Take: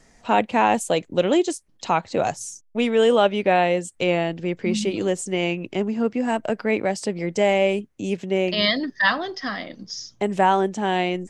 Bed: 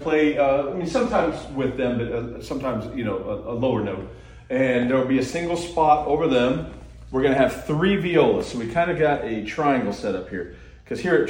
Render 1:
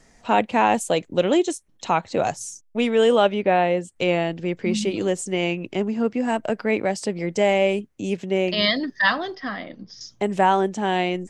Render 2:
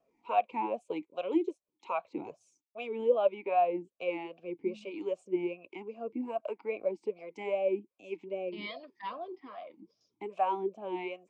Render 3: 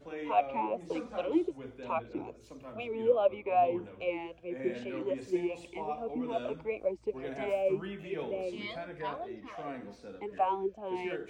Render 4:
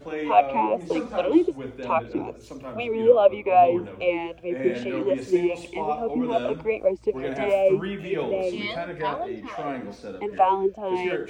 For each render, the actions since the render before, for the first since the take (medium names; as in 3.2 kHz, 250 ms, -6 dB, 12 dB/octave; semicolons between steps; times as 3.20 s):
1.39–2.09 s: band-stop 4.8 kHz, Q 7.3; 3.34–3.96 s: treble shelf 3.7 kHz -10.5 dB; 9.35–10.01 s: distance through air 220 m
harmonic tremolo 1.3 Hz, depth 70%, crossover 580 Hz; talking filter a-u 2.5 Hz
add bed -21.5 dB
trim +10 dB